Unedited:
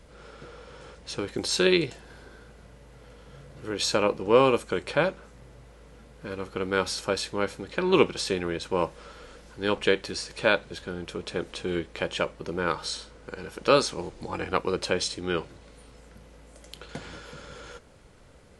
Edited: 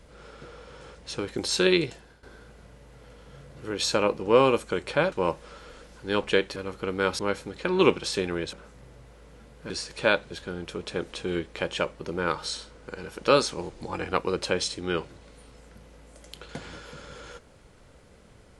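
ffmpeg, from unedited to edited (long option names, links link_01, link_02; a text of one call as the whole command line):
ffmpeg -i in.wav -filter_complex "[0:a]asplit=7[link_01][link_02][link_03][link_04][link_05][link_06][link_07];[link_01]atrim=end=2.23,asetpts=PTS-STARTPTS,afade=type=out:start_time=1.9:duration=0.33:silence=0.177828[link_08];[link_02]atrim=start=2.23:end=5.122,asetpts=PTS-STARTPTS,afade=type=in:duration=0.004:curve=hsin:silence=0.177828[link_09];[link_03]atrim=start=8.658:end=10.102[link_10];[link_04]atrim=start=6.288:end=6.922[link_11];[link_05]atrim=start=7.318:end=8.662[link_12];[link_06]atrim=start=5.118:end=6.292[link_13];[link_07]atrim=start=10.098[link_14];[link_08][link_09]concat=n=2:v=0:a=1[link_15];[link_15][link_10]acrossfade=duration=0.004:curve1=hsin:curve2=hsin[link_16];[link_16][link_11]acrossfade=duration=0.004:curve1=hsin:curve2=hsin[link_17];[link_17][link_12]acrossfade=duration=0.004:curve1=hsin:curve2=hsin[link_18];[link_18][link_13]acrossfade=duration=0.004:curve1=hsin:curve2=hsin[link_19];[link_19][link_14]acrossfade=duration=0.004:curve1=hsin:curve2=hsin" out.wav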